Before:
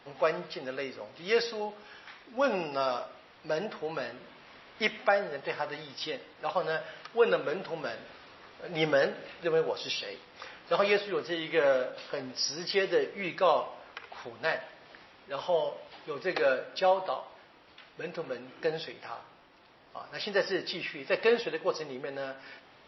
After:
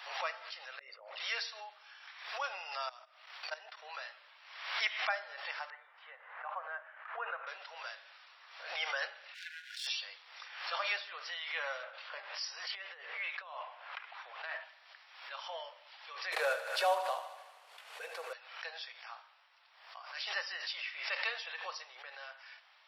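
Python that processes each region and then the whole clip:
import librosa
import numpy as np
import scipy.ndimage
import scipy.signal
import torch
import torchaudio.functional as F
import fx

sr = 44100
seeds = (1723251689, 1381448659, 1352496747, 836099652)

y = fx.chain(x, sr, fx.envelope_sharpen(power=2.0),
    fx.over_compress(threshold_db=-46.0, ratio=-1.0), at=(0.79, 1.2))
y = fx.chain(y, sr, fx.level_steps(step_db=14),
    fx.band_widen(depth_pct=70), at=(2.89, 3.82))
y = fx.chain(y, sr, fx.lowpass(hz=1800.0, slope=24),
    fx.low_shelf(hz=250.0, db=-10.0), at=(5.7, 7.47))
y = fx.chain(y, sr, fx.halfwave_gain(db=-12.0),
    fx.brickwall_bandstop(low_hz=220.0, high_hz=1400.0), at=(9.34, 9.87))
y = fx.chain(y, sr, fx.lowpass(hz=3000.0, slope=12),
    fx.over_compress(threshold_db=-33.0, ratio=-1.0), at=(11.83, 14.64))
y = fx.chain(y, sr, fx.cvsd(bps=64000),
    fx.small_body(hz=(270.0, 400.0), ring_ms=25, db=18),
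    fx.echo_thinned(ms=77, feedback_pct=71, hz=340.0, wet_db=-12.0), at=(16.32, 18.33))
y = scipy.signal.sosfilt(scipy.signal.bessel(8, 1200.0, 'highpass', norm='mag', fs=sr, output='sos'), y)
y = fx.pre_swell(y, sr, db_per_s=69.0)
y = y * 10.0 ** (-3.5 / 20.0)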